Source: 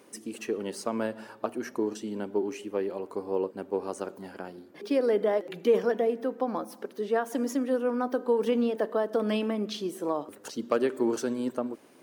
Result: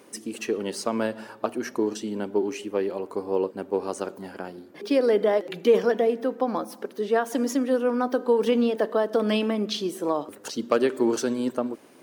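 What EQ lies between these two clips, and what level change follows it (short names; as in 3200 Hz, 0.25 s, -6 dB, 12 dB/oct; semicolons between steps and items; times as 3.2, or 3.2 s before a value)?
dynamic EQ 4200 Hz, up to +4 dB, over -49 dBFS, Q 0.85; +4.0 dB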